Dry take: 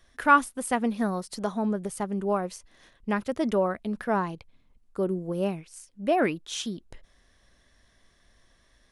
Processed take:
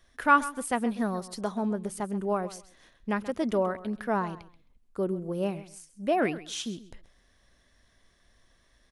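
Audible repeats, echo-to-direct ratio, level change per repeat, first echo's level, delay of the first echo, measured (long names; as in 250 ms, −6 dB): 2, −16.0 dB, −14.5 dB, −16.0 dB, 132 ms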